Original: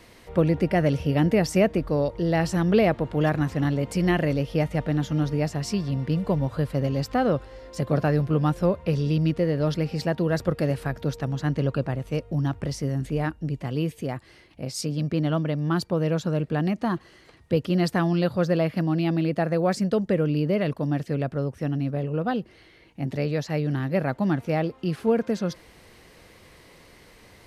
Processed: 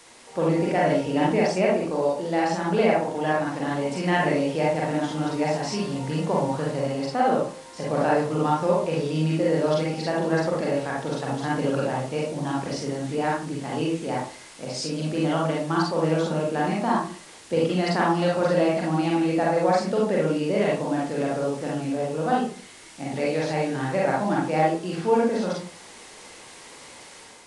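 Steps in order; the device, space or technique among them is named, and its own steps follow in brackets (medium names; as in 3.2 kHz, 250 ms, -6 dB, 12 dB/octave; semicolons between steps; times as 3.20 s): filmed off a television (band-pass 260–6900 Hz; peaking EQ 870 Hz +7 dB 0.29 oct; reverberation RT60 0.40 s, pre-delay 37 ms, DRR -4.5 dB; white noise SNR 21 dB; level rider gain up to 5 dB; trim -6 dB; AAC 96 kbps 22.05 kHz)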